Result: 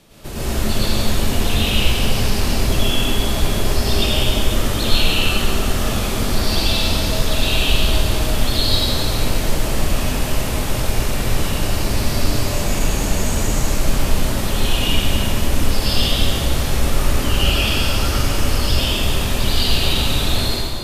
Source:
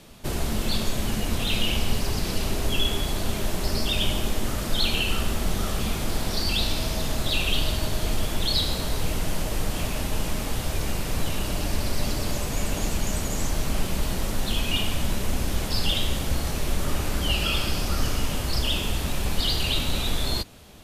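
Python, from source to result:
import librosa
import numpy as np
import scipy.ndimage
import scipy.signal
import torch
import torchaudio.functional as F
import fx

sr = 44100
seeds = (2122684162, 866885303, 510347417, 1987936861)

y = fx.rev_plate(x, sr, seeds[0], rt60_s=2.4, hf_ratio=0.8, predelay_ms=85, drr_db=-10.0)
y = y * librosa.db_to_amplitude(-2.5)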